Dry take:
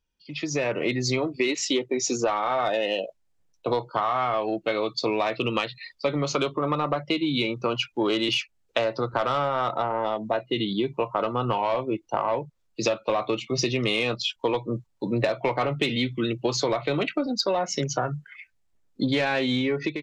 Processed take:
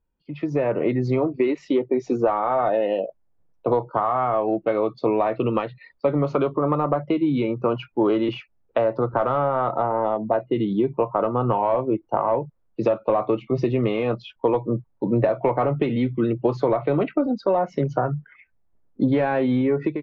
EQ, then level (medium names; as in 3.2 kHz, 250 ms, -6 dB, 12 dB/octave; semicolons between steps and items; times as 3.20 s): low-pass 1.1 kHz 12 dB/octave; +5.0 dB